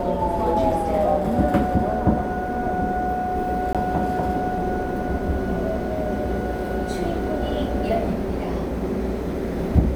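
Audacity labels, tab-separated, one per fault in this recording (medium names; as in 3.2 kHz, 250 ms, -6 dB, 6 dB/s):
3.730000	3.750000	dropout 17 ms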